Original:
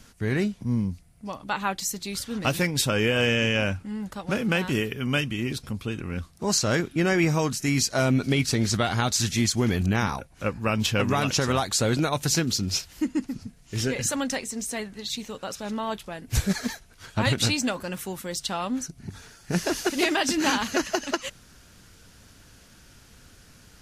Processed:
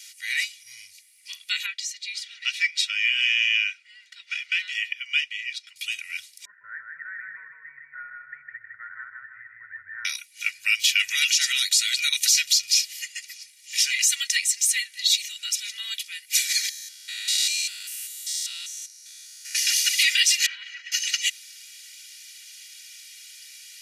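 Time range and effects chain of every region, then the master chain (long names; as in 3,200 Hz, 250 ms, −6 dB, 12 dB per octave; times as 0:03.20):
0:01.66–0:05.76: band-pass filter 390–5,200 Hz + high-shelf EQ 2,200 Hz −10.5 dB
0:06.45–0:10.05: Chebyshev low-pass filter 1,800 Hz, order 8 + repeating echo 157 ms, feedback 49%, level −3 dB
0:16.69–0:19.55: spectrum averaged block by block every 200 ms + parametric band 2,300 Hz −9 dB 1.3 octaves
0:20.46–0:20.92: low-pass filter 1,500 Hz + downward compressor 4 to 1, threshold −31 dBFS + comb filter 3.1 ms, depth 36%
whole clip: elliptic high-pass filter 2,100 Hz, stop band 60 dB; comb filter 2.1 ms, depth 86%; boost into a limiter +18 dB; level −7.5 dB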